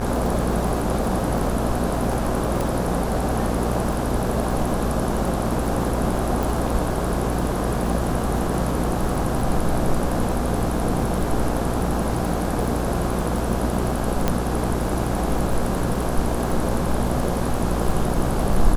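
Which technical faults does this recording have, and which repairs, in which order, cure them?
mains buzz 60 Hz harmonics 28 −26 dBFS
surface crackle 50 per second −27 dBFS
0:02.61: click
0:06.43: click
0:14.28: click −6 dBFS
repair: click removal
hum removal 60 Hz, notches 28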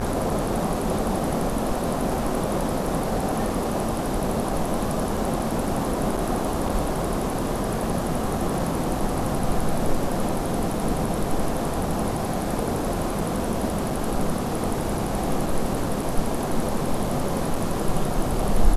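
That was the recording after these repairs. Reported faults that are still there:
0:02.61: click

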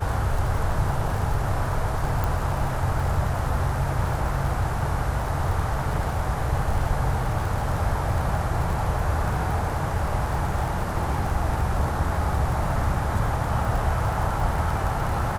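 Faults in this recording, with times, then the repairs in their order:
surface crackle 42 per second −29 dBFS
0:02.24: click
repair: click removal

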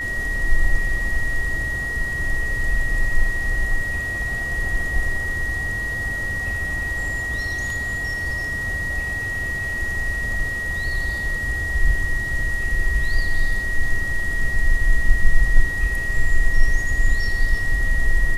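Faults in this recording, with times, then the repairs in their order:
whistle 1,900 Hz −24 dBFS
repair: notch filter 1,900 Hz, Q 30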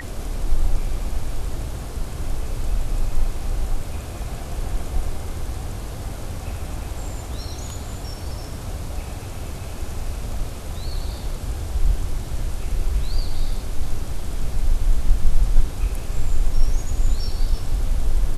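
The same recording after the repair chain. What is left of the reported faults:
none of them is left

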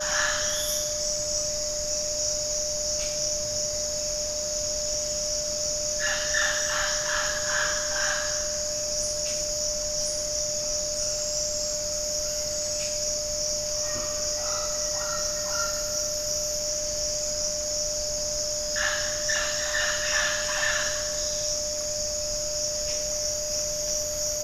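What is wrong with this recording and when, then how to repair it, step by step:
whistle 600 Hz −32 dBFS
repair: notch filter 600 Hz, Q 30

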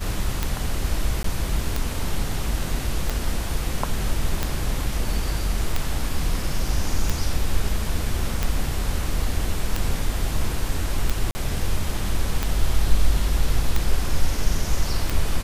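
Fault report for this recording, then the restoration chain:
scratch tick 45 rpm
0:01.23–0:01.24: drop-out 13 ms
0:11.31–0:11.35: drop-out 40 ms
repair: click removal
repair the gap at 0:01.23, 13 ms
repair the gap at 0:11.31, 40 ms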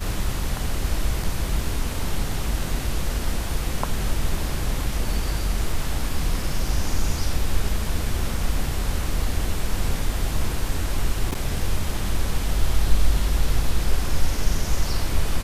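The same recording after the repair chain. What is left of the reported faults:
none of them is left

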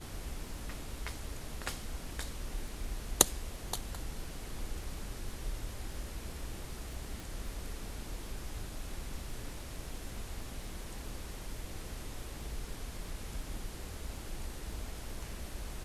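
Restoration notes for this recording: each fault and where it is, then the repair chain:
surface crackle 34 per second −47 dBFS
0:07.20: click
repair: click removal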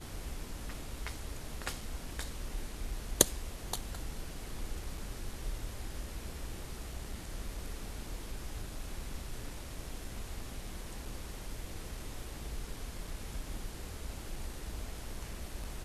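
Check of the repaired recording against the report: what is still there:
none of them is left

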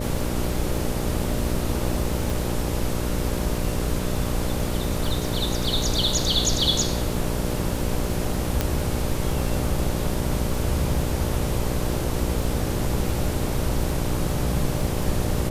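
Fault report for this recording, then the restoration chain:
mains buzz 60 Hz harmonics 10 −28 dBFS
surface crackle 22 per second −29 dBFS
0:02.30: click
0:08.61: click −7 dBFS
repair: click removal
hum removal 60 Hz, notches 10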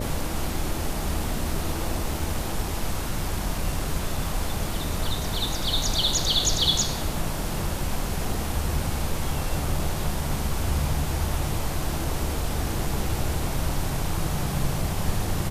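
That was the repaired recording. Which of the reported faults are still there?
0:02.30: click
0:08.61: click

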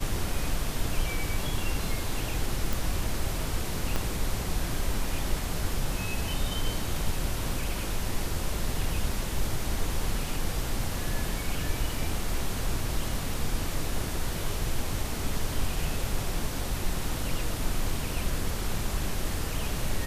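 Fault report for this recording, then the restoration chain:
0:02.73: click
0:03.96: click −13 dBFS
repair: click removal

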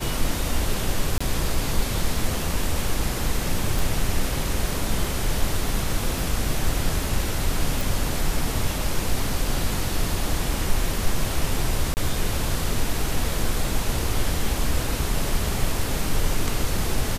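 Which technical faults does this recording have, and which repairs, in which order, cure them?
0:01.18–0:01.21: drop-out 25 ms
0:03.79: click
0:06.19: click
0:07.81: click
0:11.94–0:11.97: drop-out 29 ms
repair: click removal
repair the gap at 0:01.18, 25 ms
repair the gap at 0:11.94, 29 ms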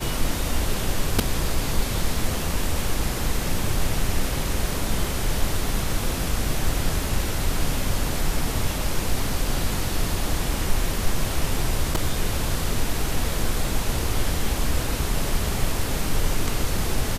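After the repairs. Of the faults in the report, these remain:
none of them is left

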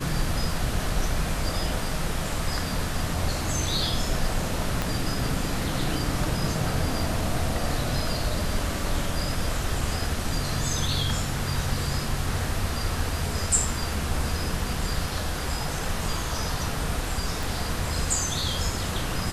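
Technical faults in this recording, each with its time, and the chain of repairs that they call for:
0:04.82: click
0:17.43: click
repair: click removal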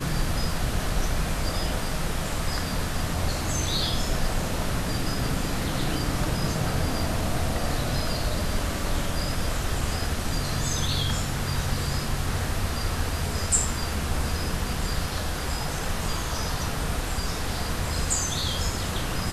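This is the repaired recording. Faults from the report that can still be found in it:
0:04.82: click
0:17.43: click

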